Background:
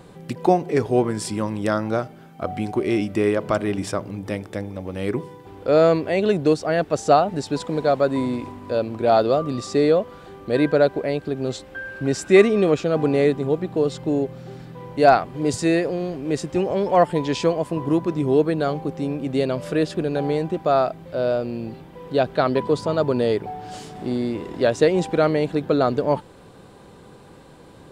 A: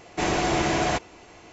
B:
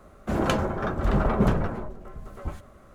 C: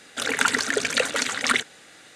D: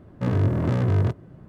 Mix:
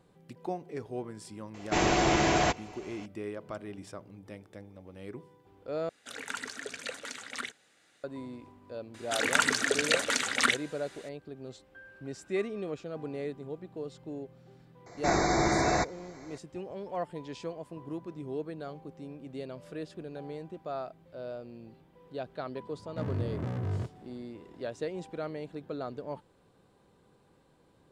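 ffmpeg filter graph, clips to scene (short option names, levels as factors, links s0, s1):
-filter_complex "[1:a]asplit=2[s0][s1];[3:a]asplit=2[s2][s3];[0:a]volume=0.119[s4];[s1]asuperstop=centerf=2900:order=20:qfactor=2.3[s5];[s4]asplit=2[s6][s7];[s6]atrim=end=5.894[s8];[s2]atrim=end=2.15,asetpts=PTS-STARTPTS,volume=0.15[s9];[s7]atrim=start=8.036[s10];[s0]atrim=end=1.52,asetpts=PTS-STARTPTS,volume=0.841,afade=t=in:d=0.004:c=hsin,afade=t=out:st=1.516:d=0.004:c=hsin,adelay=1540[s11];[s3]atrim=end=2.15,asetpts=PTS-STARTPTS,volume=0.631,afade=t=in:d=0.004:c=hsin,afade=t=out:st=2.146:d=0.004:c=hsin,adelay=8940[s12];[s5]atrim=end=1.52,asetpts=PTS-STARTPTS,volume=0.75,afade=t=in:d=0.004:c=hsin,afade=t=out:st=1.516:d=0.004:c=hsin,adelay=14860[s13];[4:a]atrim=end=1.48,asetpts=PTS-STARTPTS,volume=0.251,afade=t=in:d=0.004:c=hsin,afade=t=out:st=1.476:d=0.004:c=hsin,adelay=22750[s14];[s8][s9]acrossfade=d=0.004:c1=hsin:c2=hsin[s15];[s15][s10]acrossfade=d=0.004:c1=hsin:c2=hsin[s16];[s16][s11][s12][s13][s14]amix=inputs=5:normalize=0"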